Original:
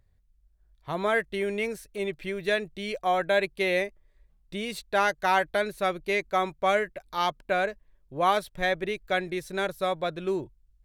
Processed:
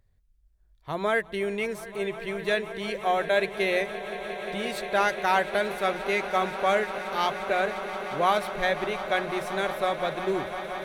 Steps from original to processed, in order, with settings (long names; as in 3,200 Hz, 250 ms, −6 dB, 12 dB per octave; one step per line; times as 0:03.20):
mains-hum notches 60/120/180 Hz
echo that builds up and dies away 176 ms, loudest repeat 8, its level −17 dB